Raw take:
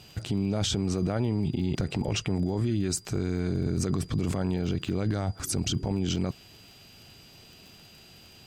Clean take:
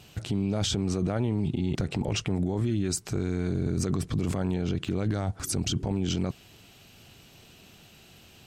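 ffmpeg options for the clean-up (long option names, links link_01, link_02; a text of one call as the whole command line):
ffmpeg -i in.wav -af "adeclick=threshold=4,bandreject=frequency=4800:width=30" out.wav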